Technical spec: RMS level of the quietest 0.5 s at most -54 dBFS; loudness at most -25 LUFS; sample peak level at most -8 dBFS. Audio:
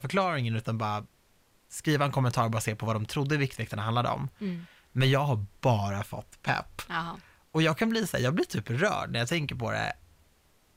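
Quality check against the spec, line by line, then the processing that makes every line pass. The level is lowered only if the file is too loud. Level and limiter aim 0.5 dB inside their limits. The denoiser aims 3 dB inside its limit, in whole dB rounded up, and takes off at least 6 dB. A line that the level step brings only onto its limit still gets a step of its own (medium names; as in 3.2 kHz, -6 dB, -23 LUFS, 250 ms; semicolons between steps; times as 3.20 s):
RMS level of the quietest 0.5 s -65 dBFS: pass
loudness -29.5 LUFS: pass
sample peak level -14.5 dBFS: pass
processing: none needed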